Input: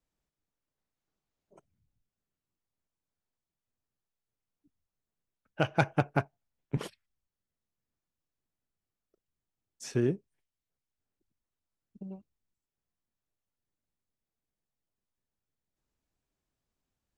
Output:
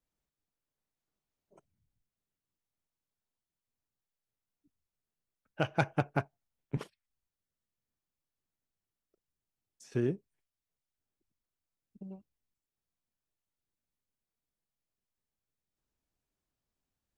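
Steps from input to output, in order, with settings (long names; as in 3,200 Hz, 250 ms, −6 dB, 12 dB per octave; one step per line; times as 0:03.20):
0:06.83–0:09.92: downward compressor 6 to 1, threshold −53 dBFS, peak gain reduction 14 dB
level −3 dB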